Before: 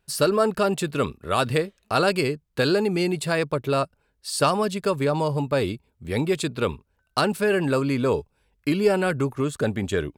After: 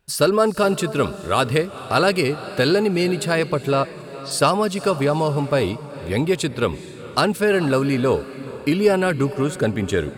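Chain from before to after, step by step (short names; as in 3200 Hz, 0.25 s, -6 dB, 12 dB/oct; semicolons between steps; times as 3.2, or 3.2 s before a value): 3.71–4.31 LPF 4400 Hz 12 dB/oct; diffused feedback echo 0.451 s, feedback 45%, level -15 dB; gain +3.5 dB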